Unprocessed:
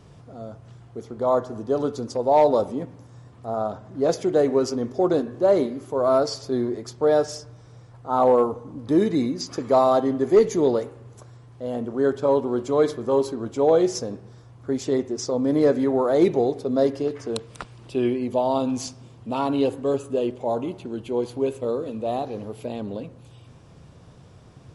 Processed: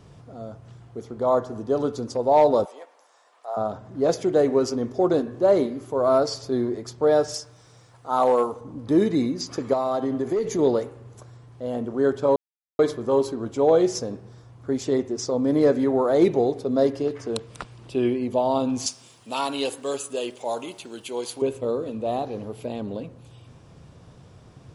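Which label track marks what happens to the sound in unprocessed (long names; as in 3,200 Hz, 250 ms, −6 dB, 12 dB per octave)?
2.650000	3.570000	high-pass filter 610 Hz 24 dB per octave
7.340000	8.610000	spectral tilt +2.5 dB per octave
9.730000	10.590000	downward compressor 10 to 1, threshold −20 dBFS
12.360000	12.790000	silence
18.860000	21.420000	spectral tilt +4.5 dB per octave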